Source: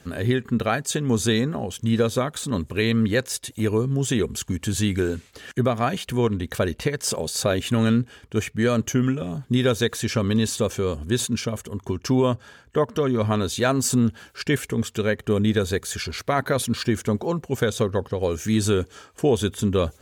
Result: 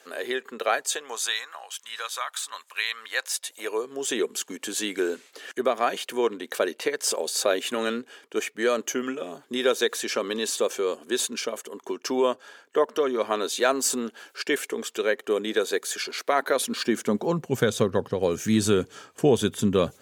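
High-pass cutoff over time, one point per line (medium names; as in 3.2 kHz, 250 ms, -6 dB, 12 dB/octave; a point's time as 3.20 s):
high-pass 24 dB/octave
0.79 s 420 Hz
1.41 s 940 Hz
2.90 s 940 Hz
4.18 s 330 Hz
16.51 s 330 Hz
17.54 s 120 Hz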